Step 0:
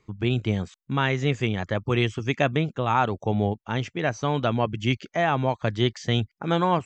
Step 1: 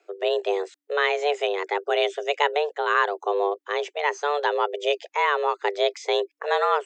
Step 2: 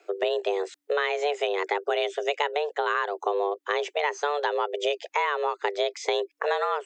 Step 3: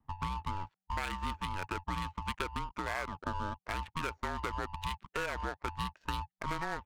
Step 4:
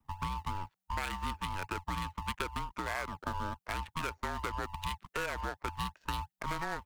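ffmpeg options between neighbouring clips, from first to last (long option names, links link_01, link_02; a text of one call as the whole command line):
ffmpeg -i in.wav -af "equalizer=frequency=1600:width=4.1:gain=4.5,afreqshift=290" out.wav
ffmpeg -i in.wav -af "acompressor=threshold=-29dB:ratio=6,volume=6dB" out.wav
ffmpeg -i in.wav -af "aeval=exprs='val(0)*sin(2*PI*480*n/s)':channel_layout=same,adynamicsmooth=sensitivity=5.5:basefreq=620,volume=-7dB" out.wav
ffmpeg -i in.wav -filter_complex "[0:a]highshelf=frequency=9700:gain=7,acrossover=split=300[link_01][link_02];[link_01]acrusher=samples=32:mix=1:aa=0.000001:lfo=1:lforange=32:lforate=2.8[link_03];[link_03][link_02]amix=inputs=2:normalize=0" out.wav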